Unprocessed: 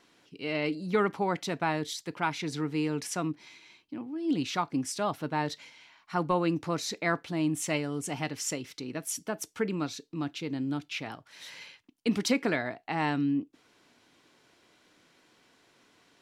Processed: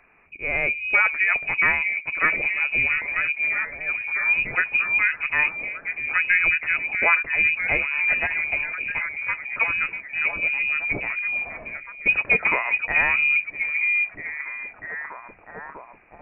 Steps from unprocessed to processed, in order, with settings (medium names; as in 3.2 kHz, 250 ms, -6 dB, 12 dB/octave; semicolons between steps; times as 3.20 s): repeats whose band climbs or falls 646 ms, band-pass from 320 Hz, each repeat 0.7 oct, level -1 dB; frequency inversion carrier 2.7 kHz; trim +7 dB